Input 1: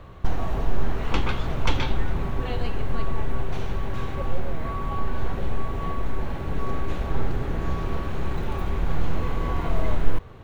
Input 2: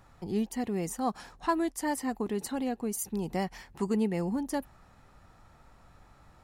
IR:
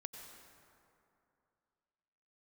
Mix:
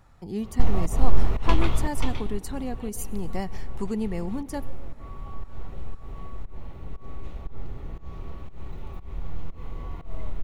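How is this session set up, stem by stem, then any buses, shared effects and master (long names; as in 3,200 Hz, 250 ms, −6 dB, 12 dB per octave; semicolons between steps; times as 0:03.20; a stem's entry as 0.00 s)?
0:01.74 −3 dB → 0:02.31 −15.5 dB, 0.35 s, send −9.5 dB, notch filter 1,600 Hz, Q 6; fake sidechain pumping 118 BPM, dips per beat 1, −24 dB, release 174 ms
−3.0 dB, 0.00 s, send −10 dB, no processing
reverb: on, RT60 2.7 s, pre-delay 83 ms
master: low-shelf EQ 94 Hz +7.5 dB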